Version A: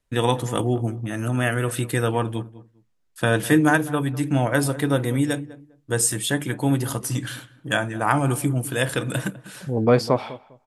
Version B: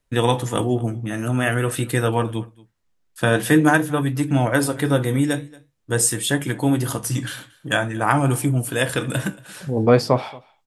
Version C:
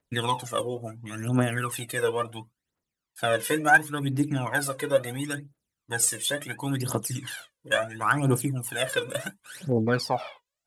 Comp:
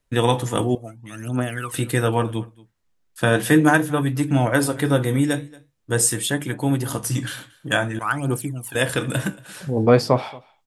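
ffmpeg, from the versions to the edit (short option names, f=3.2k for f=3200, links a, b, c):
-filter_complex "[2:a]asplit=2[a][b];[1:a]asplit=4[c][d][e][f];[c]atrim=end=0.752[g];[a]atrim=start=0.748:end=1.742[h];[d]atrim=start=1.738:end=6.272[i];[0:a]atrim=start=6.268:end=6.932[j];[e]atrim=start=6.928:end=7.992[k];[b]atrim=start=7.988:end=8.752[l];[f]atrim=start=8.748[m];[g][h]acrossfade=d=0.004:c1=hsin:c2=hsin[n];[n][i]acrossfade=d=0.004:c1=hsin:c2=hsin[o];[o][j]acrossfade=d=0.004:c1=hsin:c2=hsin[p];[p][k]acrossfade=d=0.004:c1=hsin:c2=hsin[q];[q][l]acrossfade=d=0.004:c1=hsin:c2=hsin[r];[r][m]acrossfade=d=0.004:c1=hsin:c2=hsin"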